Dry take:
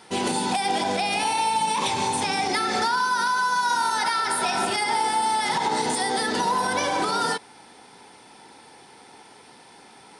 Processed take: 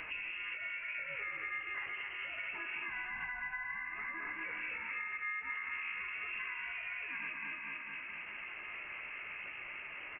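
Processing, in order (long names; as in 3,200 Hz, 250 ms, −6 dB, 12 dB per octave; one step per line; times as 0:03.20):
spectral envelope exaggerated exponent 1.5
high-frequency loss of the air 67 metres
chorus effect 0.8 Hz, delay 17 ms, depth 2.3 ms
automatic gain control gain up to 6 dB
repeating echo 223 ms, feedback 43%, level −6 dB
amplitude tremolo 0.64 Hz, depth 49%
dynamic equaliser 2,000 Hz, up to −7 dB, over −54 dBFS, Q 0.85
downward compressor 6 to 1, threshold −58 dBFS, peak gain reduction 34.5 dB
single-tap delay 256 ms −10 dB
pitch-shifted copies added +5 semitones −10 dB, +7 semitones −9 dB, +12 semitones −9 dB
voice inversion scrambler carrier 3,000 Hz
level +13 dB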